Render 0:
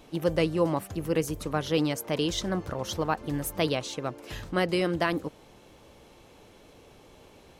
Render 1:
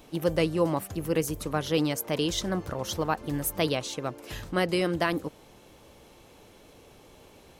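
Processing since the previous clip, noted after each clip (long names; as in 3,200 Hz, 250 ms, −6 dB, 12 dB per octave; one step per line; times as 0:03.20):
high-shelf EQ 9,600 Hz +7.5 dB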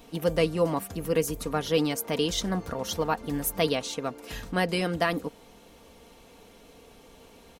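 comb filter 4.3 ms, depth 49%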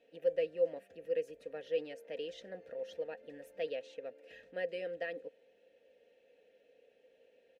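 formant filter e
level −4 dB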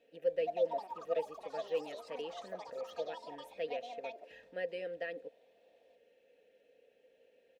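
delay with pitch and tempo change per echo 285 ms, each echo +5 semitones, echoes 3, each echo −6 dB
level −1 dB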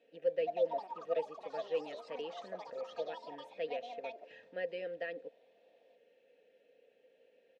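band-pass filter 110–5,300 Hz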